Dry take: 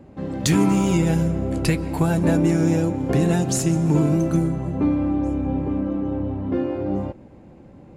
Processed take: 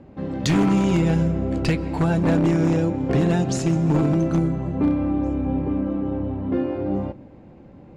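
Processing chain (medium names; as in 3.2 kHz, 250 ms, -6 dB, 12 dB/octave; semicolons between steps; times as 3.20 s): low-pass 5 kHz 12 dB/octave; wavefolder -12 dBFS; on a send: reverberation RT60 0.75 s, pre-delay 4 ms, DRR 22 dB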